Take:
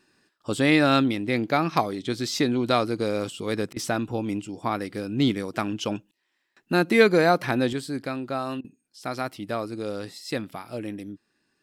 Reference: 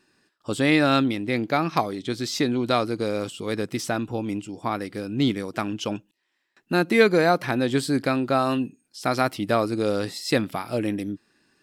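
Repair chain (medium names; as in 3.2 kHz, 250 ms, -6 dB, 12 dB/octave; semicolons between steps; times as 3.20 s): interpolate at 3.73/8.61 s, 33 ms; trim 0 dB, from 7.73 s +7.5 dB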